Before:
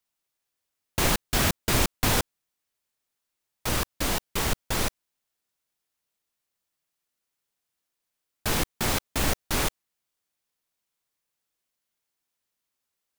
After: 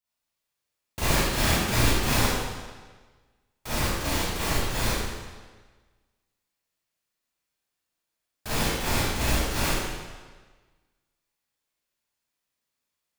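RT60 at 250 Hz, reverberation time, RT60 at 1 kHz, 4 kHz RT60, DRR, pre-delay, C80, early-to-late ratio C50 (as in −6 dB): 1.4 s, 1.4 s, 1.4 s, 1.3 s, −11.5 dB, 35 ms, −0.5 dB, −4.0 dB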